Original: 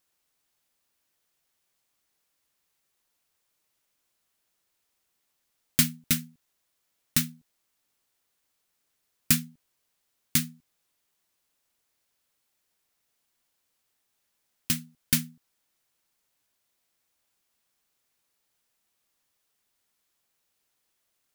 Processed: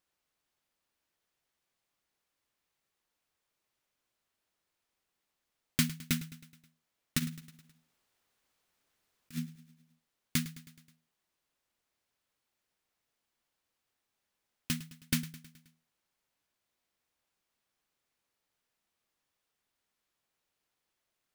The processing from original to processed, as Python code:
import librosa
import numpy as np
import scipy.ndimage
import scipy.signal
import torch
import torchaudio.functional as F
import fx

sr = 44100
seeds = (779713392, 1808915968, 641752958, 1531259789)

y = fx.high_shelf(x, sr, hz=5300.0, db=-9.0)
y = fx.over_compress(y, sr, threshold_db=-33.0, ratio=-0.5, at=(7.18, 9.45), fade=0.02)
y = fx.echo_feedback(y, sr, ms=106, feedback_pct=58, wet_db=-17)
y = F.gain(torch.from_numpy(y), -3.0).numpy()